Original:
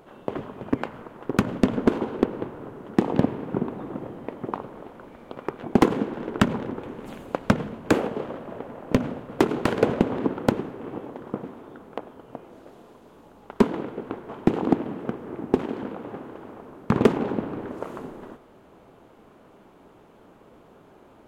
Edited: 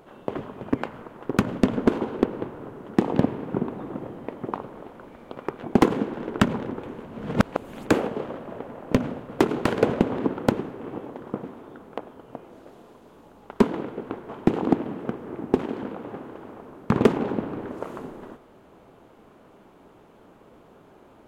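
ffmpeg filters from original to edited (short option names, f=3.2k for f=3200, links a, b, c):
-filter_complex "[0:a]asplit=3[a][b][c];[a]atrim=end=7.032[d];[b]atrim=start=7.028:end=7.882,asetpts=PTS-STARTPTS,areverse[e];[c]atrim=start=7.878[f];[d][e]acrossfade=d=0.004:c1=hsin:c2=hsin[g];[g][f]acrossfade=d=0.004:c1=hsin:c2=hsin"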